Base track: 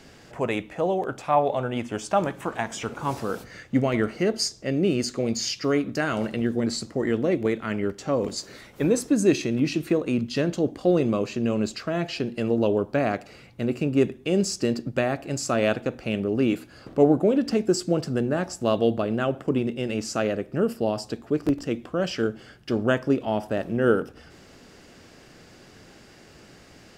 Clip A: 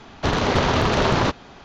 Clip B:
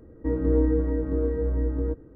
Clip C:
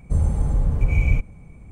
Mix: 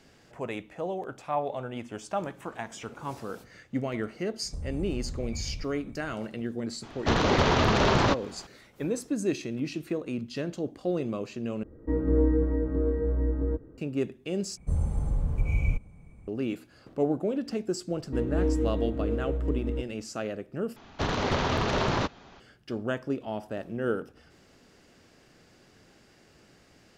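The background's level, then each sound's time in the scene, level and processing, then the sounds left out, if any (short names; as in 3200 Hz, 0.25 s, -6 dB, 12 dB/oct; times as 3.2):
base track -8.5 dB
4.43 add C -6.5 dB + compressor 10:1, threshold -25 dBFS
6.83 add A -3.5 dB
11.63 replace with B -1.5 dB
14.57 replace with C -7.5 dB + dynamic EQ 1800 Hz, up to -6 dB, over -57 dBFS, Q 5.6
17.88 add B -4.5 dB + median filter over 25 samples
20.76 replace with A -7.5 dB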